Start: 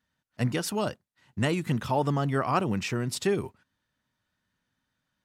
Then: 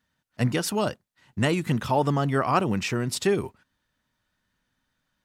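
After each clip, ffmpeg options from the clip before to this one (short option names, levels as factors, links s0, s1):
-af "asubboost=boost=3:cutoff=52,volume=1.5"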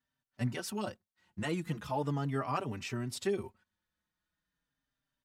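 -filter_complex "[0:a]asplit=2[s0][s1];[s1]adelay=4.6,afreqshift=-0.39[s2];[s0][s2]amix=inputs=2:normalize=1,volume=0.376"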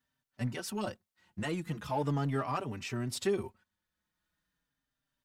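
-filter_complex "[0:a]tremolo=f=0.92:d=0.36,asplit=2[s0][s1];[s1]asoftclip=type=hard:threshold=0.0133,volume=0.355[s2];[s0][s2]amix=inputs=2:normalize=0,volume=1.12"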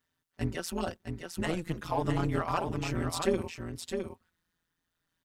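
-af "tremolo=f=170:d=0.919,aecho=1:1:661:0.501,volume=2"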